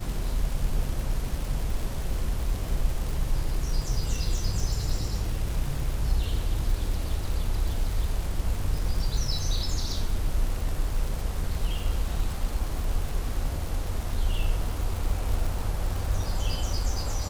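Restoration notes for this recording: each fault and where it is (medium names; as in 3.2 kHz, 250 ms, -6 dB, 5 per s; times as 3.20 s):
crackle 130 per s -31 dBFS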